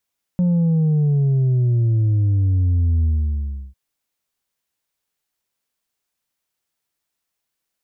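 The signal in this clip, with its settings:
bass drop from 180 Hz, over 3.35 s, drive 3 dB, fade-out 0.70 s, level −14.5 dB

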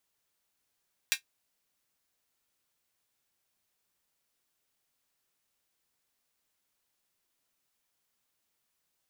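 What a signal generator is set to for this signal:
closed synth hi-hat, high-pass 2,100 Hz, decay 0.11 s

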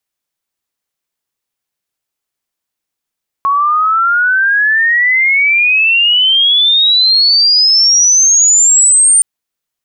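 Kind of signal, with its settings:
glide logarithmic 1,100 Hz → 9,000 Hz −8.5 dBFS → −4.5 dBFS 5.77 s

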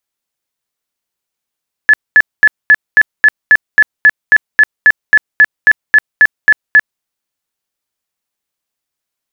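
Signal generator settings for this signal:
tone bursts 1,720 Hz, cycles 78, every 0.27 s, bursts 19, −1.5 dBFS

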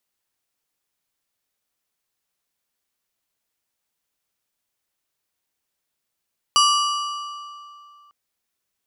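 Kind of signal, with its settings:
struck metal plate, lowest mode 1,170 Hz, modes 7, decay 2.55 s, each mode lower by 3 dB, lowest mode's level −14 dB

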